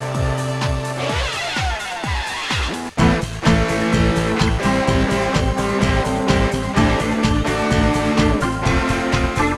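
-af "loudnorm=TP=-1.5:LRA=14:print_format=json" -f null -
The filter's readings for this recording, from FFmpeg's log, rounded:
"input_i" : "-18.4",
"input_tp" : "-1.7",
"input_lra" : "2.0",
"input_thresh" : "-28.4",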